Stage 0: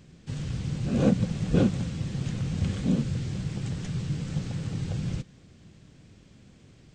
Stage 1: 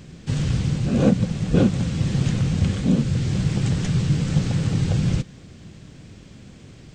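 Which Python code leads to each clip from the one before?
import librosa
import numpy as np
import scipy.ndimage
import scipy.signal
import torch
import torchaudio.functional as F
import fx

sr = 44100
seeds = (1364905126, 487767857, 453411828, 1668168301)

y = fx.rider(x, sr, range_db=3, speed_s=0.5)
y = F.gain(torch.from_numpy(y), 7.5).numpy()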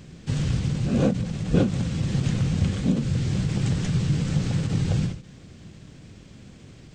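y = fx.end_taper(x, sr, db_per_s=120.0)
y = F.gain(torch.from_numpy(y), -2.0).numpy()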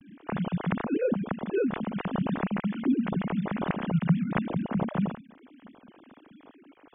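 y = fx.sine_speech(x, sr)
y = F.gain(torch.from_numpy(y), -5.0).numpy()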